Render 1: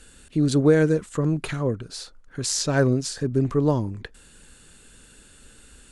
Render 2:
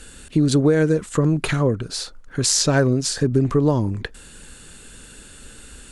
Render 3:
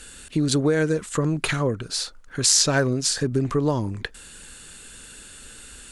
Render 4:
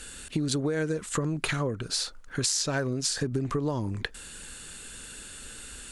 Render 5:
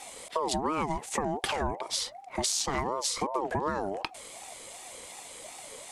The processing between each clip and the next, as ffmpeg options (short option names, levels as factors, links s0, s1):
-af "acompressor=threshold=0.0794:ratio=4,volume=2.51"
-af "tiltshelf=f=800:g=-3.5,volume=0.794"
-af "acompressor=threshold=0.0562:ratio=6"
-af "aeval=exprs='val(0)*sin(2*PI*640*n/s+640*0.25/2.7*sin(2*PI*2.7*n/s))':c=same,volume=1.12"